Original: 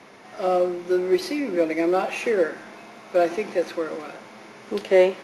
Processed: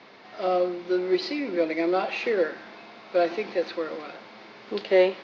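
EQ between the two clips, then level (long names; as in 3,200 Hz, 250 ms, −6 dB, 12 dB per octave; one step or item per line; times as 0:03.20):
low-pass with resonance 4,400 Hz, resonance Q 2.8
high-frequency loss of the air 120 metres
low-shelf EQ 140 Hz −7.5 dB
−2.0 dB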